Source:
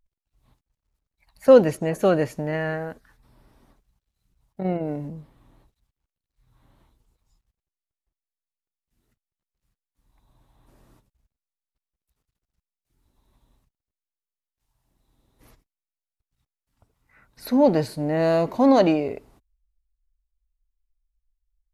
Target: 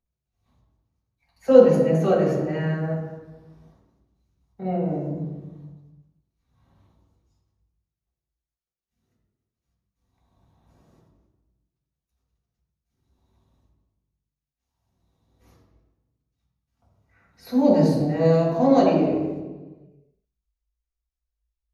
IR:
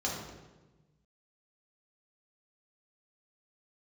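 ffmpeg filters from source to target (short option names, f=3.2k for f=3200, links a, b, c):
-filter_complex "[0:a]asettb=1/sr,asplit=3[a][b][c];[a]atrim=end=17.584[d];[b]atrim=start=17.58:end=18.02,asetpts=PTS-STARTPTS,afade=t=in:d=0.004:c=qsin,afade=t=out:st=0.436:d=0.004:c=qsin,bass=f=250:g=4,treble=f=4k:g=5[e];[c]atrim=start=18.016[f];[d][e]acrossfade=d=0.004:c1=hsin:c2=qsin[g];[g][f]acrossfade=d=0.004:c1=qsin:c2=hsin[h];[1:a]atrim=start_sample=2205,asetrate=41013,aresample=44100[i];[h][i]afir=irnorm=-1:irlink=0,volume=-9dB"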